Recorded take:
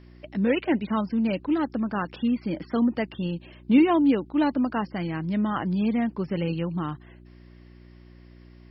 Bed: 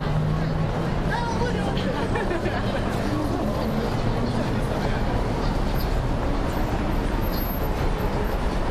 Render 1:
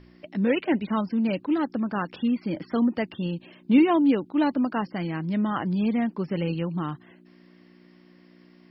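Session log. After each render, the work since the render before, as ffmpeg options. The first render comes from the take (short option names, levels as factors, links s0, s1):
-af "bandreject=f=60:t=h:w=4,bandreject=f=120:t=h:w=4"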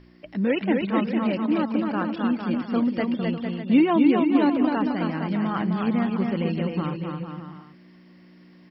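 -af "aecho=1:1:260|455|601.2|710.9|793.2:0.631|0.398|0.251|0.158|0.1"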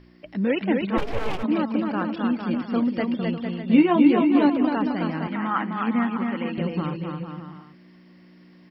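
-filter_complex "[0:a]asplit=3[s0][s1][s2];[s0]afade=t=out:st=0.97:d=0.02[s3];[s1]aeval=exprs='abs(val(0))':c=same,afade=t=in:st=0.97:d=0.02,afade=t=out:st=1.42:d=0.02[s4];[s2]afade=t=in:st=1.42:d=0.02[s5];[s3][s4][s5]amix=inputs=3:normalize=0,asettb=1/sr,asplit=3[s6][s7][s8];[s6]atrim=end=3.624[s9];[s7]atrim=start=3.62:end=4.48,asetpts=PTS-STARTPTS,afade=t=in:d=0.004:c=qsin,afade=t=out:st=0.856:d=0.004:c=qsin,asplit=2[s10][s11];[s11]adelay=17,volume=0.562[s12];[s10][s12]amix=inputs=2:normalize=0,atrim=end_sample=37926[s13];[s8]atrim=start=4.476[s14];[s9][s13]acrossfade=d=0.004:c1=hsin:c2=qsin[s15];[s15][s14]acrossfade=d=0.004:c1=qsin:c2=hsin,asettb=1/sr,asplit=3[s16][s17][s18];[s16]atrim=end=5.274[s19];[s17]atrim=start=5.27:end=6.58,asetpts=PTS-STARTPTS,afade=t=in:d=0.004:c=qsin,afade=t=out:st=1.306:d=0.004:c=qsin,highpass=f=240:w=0.5412,highpass=f=240:w=1.3066,equalizer=f=250:t=q:w=4:g=7,equalizer=f=390:t=q:w=4:g=-9,equalizer=f=620:t=q:w=4:g=-5,equalizer=f=910:t=q:w=4:g=5,equalizer=f=1300:t=q:w=4:g=7,equalizer=f=1900:t=q:w=4:g=5,lowpass=f=3400:w=0.5412,lowpass=f=3400:w=1.3066[s20];[s18]atrim=start=6.576[s21];[s19][s20]acrossfade=d=0.004:c1=hsin:c2=qsin[s22];[s22][s21]acrossfade=d=0.004:c1=qsin:c2=hsin"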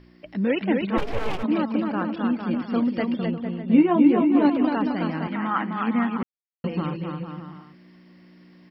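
-filter_complex "[0:a]asettb=1/sr,asplit=3[s0][s1][s2];[s0]atrim=end=1.884[s3];[s1]atrim=start=1.88:end=2.62,asetpts=PTS-STARTPTS,afade=t=in:d=0.004:c=qsin,afade=t=out:st=0.736:d=0.004:c=qsin,highshelf=f=3800:g=-6[s4];[s2]atrim=start=2.616[s5];[s3][s4]acrossfade=d=0.004:c1=hsin:c2=qsin[s6];[s6][s5]acrossfade=d=0.004:c1=qsin:c2=hsin,asettb=1/sr,asplit=3[s7][s8][s9];[s7]atrim=end=3.264[s10];[s8]atrim=start=3.26:end=4.45,asetpts=PTS-STARTPTS,afade=t=in:d=0.004:c=qsin,afade=t=out:st=1.186:d=0.004:c=qsin,lowpass=f=1400:p=1[s11];[s9]atrim=start=4.446[s12];[s10][s11]acrossfade=d=0.004:c1=hsin:c2=qsin[s13];[s13][s12]acrossfade=d=0.004:c1=qsin:c2=hsin,asplit=3[s14][s15][s16];[s14]atrim=end=6.23,asetpts=PTS-STARTPTS,afade=t=out:st=6.226:d=0.004:c=hsin[s17];[s15]atrim=start=6.23:end=6.64,asetpts=PTS-STARTPTS,volume=0[s18];[s16]atrim=start=6.64,asetpts=PTS-STARTPTS,afade=t=in:d=0.004:c=hsin[s19];[s17][s18][s19]concat=n=3:v=0:a=1"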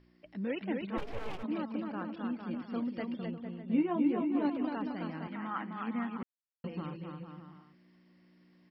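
-af "volume=0.237"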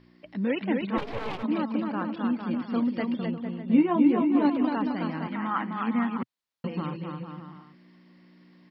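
-af "equalizer=f=125:t=o:w=1:g=7,equalizer=f=250:t=o:w=1:g=7,equalizer=f=500:t=o:w=1:g=4,equalizer=f=1000:t=o:w=1:g=8,equalizer=f=2000:t=o:w=1:g=5,equalizer=f=4000:t=o:w=1:g=9"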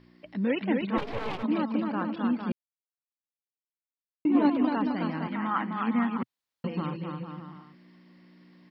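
-filter_complex "[0:a]asplit=3[s0][s1][s2];[s0]atrim=end=2.52,asetpts=PTS-STARTPTS,afade=t=out:st=2.516:d=0.004:c=hsin[s3];[s1]atrim=start=2.52:end=4.25,asetpts=PTS-STARTPTS,volume=0[s4];[s2]atrim=start=4.25,asetpts=PTS-STARTPTS,afade=t=in:d=0.004:c=hsin[s5];[s3][s4][s5]concat=n=3:v=0:a=1"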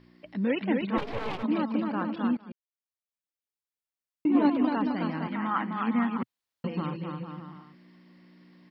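-filter_complex "[0:a]asplit=2[s0][s1];[s0]atrim=end=2.37,asetpts=PTS-STARTPTS,afade=t=out:st=2.366:d=0.004:c=hsin:silence=0.125893[s2];[s1]atrim=start=2.37,asetpts=PTS-STARTPTS,afade=t=in:d=1.89:c=qsin:silence=0.125893[s3];[s2][s3]concat=n=2:v=0:a=1"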